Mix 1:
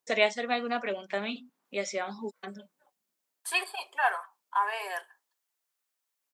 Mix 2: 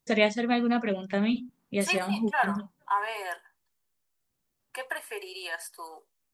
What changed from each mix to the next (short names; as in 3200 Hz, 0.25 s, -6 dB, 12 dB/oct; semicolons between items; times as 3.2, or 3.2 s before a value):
second voice: entry -1.65 s; master: remove HPF 460 Hz 12 dB/oct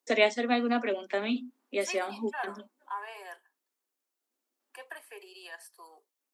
second voice -10.0 dB; master: add steep high-pass 240 Hz 72 dB/oct